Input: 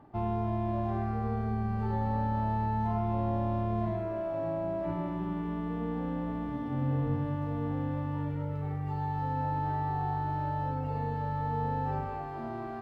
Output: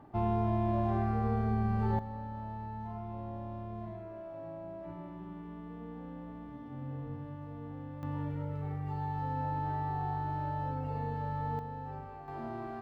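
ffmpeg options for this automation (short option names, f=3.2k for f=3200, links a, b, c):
-af "asetnsamples=n=441:p=0,asendcmd='1.99 volume volume -11dB;8.03 volume volume -3dB;11.59 volume volume -10dB;12.28 volume volume -2.5dB',volume=1dB"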